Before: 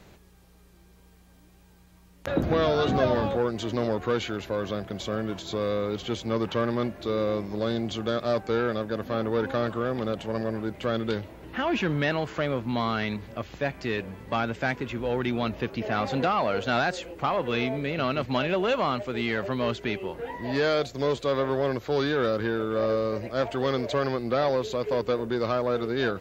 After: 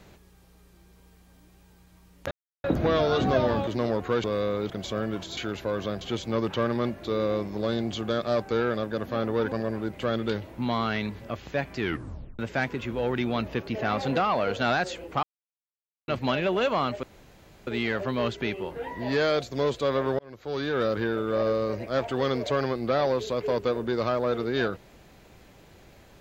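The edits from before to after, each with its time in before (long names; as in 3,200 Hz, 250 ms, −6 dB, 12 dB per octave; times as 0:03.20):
0:02.31: splice in silence 0.33 s
0:03.34–0:03.65: remove
0:04.22–0:04.86: swap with 0:05.53–0:05.99
0:09.50–0:10.33: remove
0:11.39–0:12.65: remove
0:13.86: tape stop 0.60 s
0:17.30–0:18.15: silence
0:19.10: splice in room tone 0.64 s
0:21.62–0:22.30: fade in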